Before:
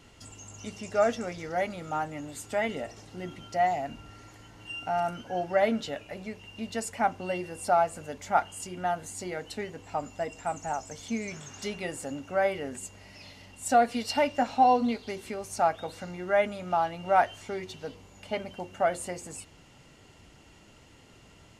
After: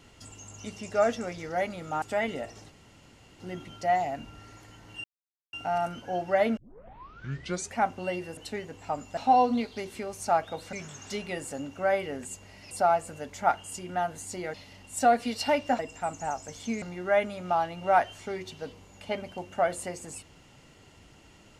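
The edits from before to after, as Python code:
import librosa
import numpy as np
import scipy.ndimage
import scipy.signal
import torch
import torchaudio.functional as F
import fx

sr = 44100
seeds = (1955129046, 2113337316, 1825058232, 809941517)

y = fx.edit(x, sr, fx.cut(start_s=2.02, length_s=0.41),
    fx.insert_room_tone(at_s=3.11, length_s=0.7),
    fx.insert_silence(at_s=4.75, length_s=0.49),
    fx.tape_start(start_s=5.79, length_s=1.22),
    fx.move(start_s=7.59, length_s=1.83, to_s=13.23),
    fx.swap(start_s=10.22, length_s=1.03, other_s=14.48, other_length_s=1.56), tone=tone)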